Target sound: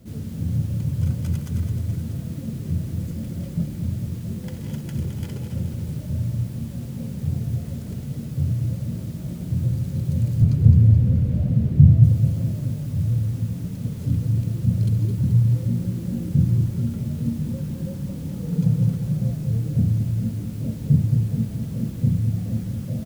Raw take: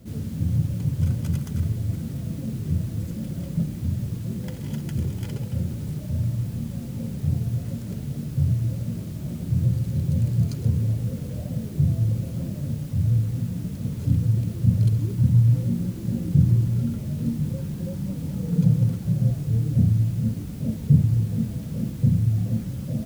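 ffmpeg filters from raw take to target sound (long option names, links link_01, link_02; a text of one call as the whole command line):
ffmpeg -i in.wav -filter_complex "[0:a]asettb=1/sr,asplit=3[link_01][link_02][link_03];[link_01]atrim=end=10.424[link_04];[link_02]atrim=start=10.42:end=12.04,asetpts=PTS-STARTPTS,afade=type=in:duration=0.004:curve=qsin,afade=type=out:start_time=1.616:duration=0.004:curve=qsin,bass=frequency=250:gain=11,treble=frequency=4000:gain=-10[link_05];[link_03]atrim=start=12.036[link_06];[link_04][link_05]acrossfade=duration=0.004:curve1=hsin:curve2=qsin[link_07];[link_07][link_06]acrossfade=duration=0.004:curve1=qsin:curve2=hsin,asplit=2[link_08][link_09];[link_09]aecho=0:1:214|428|642|856|1070|1284|1498:0.398|0.231|0.134|0.0777|0.0451|0.0261|0.0152[link_10];[link_08][link_10]amix=inputs=2:normalize=0,volume=-1dB" out.wav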